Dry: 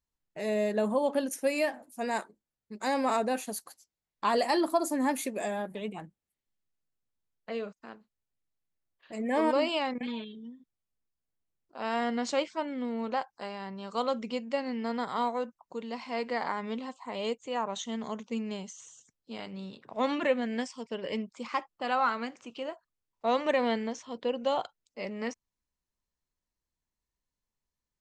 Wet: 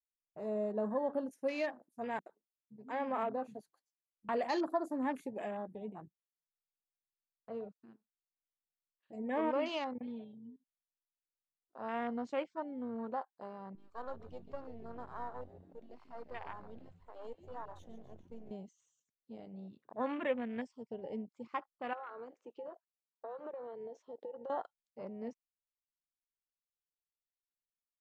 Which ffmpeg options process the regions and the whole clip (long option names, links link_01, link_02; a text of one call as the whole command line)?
ffmpeg -i in.wav -filter_complex "[0:a]asettb=1/sr,asplit=3[link_01][link_02][link_03];[link_01]atrim=end=2.194[link_04];[link_02]atrim=start=2.19:end=4.29,asetpts=PTS-STARTPTS,afade=type=in:duration=0.004:curve=qsin,afade=type=out:start_time=2.096:duration=0.004:curve=qsin,lowpass=frequency=3500:poles=1,acrossover=split=220[link_05][link_06];[link_06]adelay=70[link_07];[link_05][link_07]amix=inputs=2:normalize=0,atrim=end_sample=92610[link_08];[link_03]atrim=start=4.286[link_09];[link_04][link_08]acrossfade=duration=0.004:curve1=hsin:curve2=qsin[link_10];[link_10][link_09]acrossfade=duration=0.004:curve1=qsin:curve2=hsin,asettb=1/sr,asplit=3[link_11][link_12][link_13];[link_11]atrim=end=13.754[link_14];[link_12]atrim=start=13.75:end=18.51,asetpts=PTS-STARTPTS,afade=type=in:duration=0.004:curve=qsin,afade=type=out:start_time=4.756:duration=0.004:curve=qsin,aeval=exprs='if(lt(val(0),0),0.251*val(0),val(0))':channel_layout=same,equalizer=frequency=160:width=0.64:gain=-11.5,asplit=8[link_15][link_16][link_17][link_18][link_19][link_20][link_21][link_22];[link_16]adelay=141,afreqshift=-91,volume=-12dB[link_23];[link_17]adelay=282,afreqshift=-182,volume=-16.3dB[link_24];[link_18]adelay=423,afreqshift=-273,volume=-20.6dB[link_25];[link_19]adelay=564,afreqshift=-364,volume=-24.9dB[link_26];[link_20]adelay=705,afreqshift=-455,volume=-29.2dB[link_27];[link_21]adelay=846,afreqshift=-546,volume=-33.5dB[link_28];[link_22]adelay=987,afreqshift=-637,volume=-37.8dB[link_29];[link_15][link_23][link_24][link_25][link_26][link_27][link_28][link_29]amix=inputs=8:normalize=0,atrim=end_sample=209916[link_30];[link_13]atrim=start=18.506[link_31];[link_14][link_30]acrossfade=duration=0.004:curve1=hsin:curve2=qsin[link_32];[link_32][link_31]acrossfade=duration=0.004:curve1=qsin:curve2=hsin,asettb=1/sr,asplit=3[link_33][link_34][link_35];[link_33]atrim=end=21.934[link_36];[link_34]atrim=start=21.93:end=24.5,asetpts=PTS-STARTPTS,afade=type=in:duration=0.004:curve=qsin,afade=type=out:start_time=2.566:duration=0.004:curve=qsin,highpass=frequency=420:width_type=q:width=2.5,acompressor=threshold=-34dB:ratio=10:attack=3.2:release=140:knee=1:detection=peak[link_37];[link_35]atrim=start=24.496[link_38];[link_36][link_37]acrossfade=duration=0.004:curve1=hsin:curve2=qsin[link_39];[link_39][link_38]acrossfade=duration=0.004:curve1=qsin:curve2=hsin,afwtdn=0.0126,highshelf=frequency=5300:gain=-5,volume=-7dB" out.wav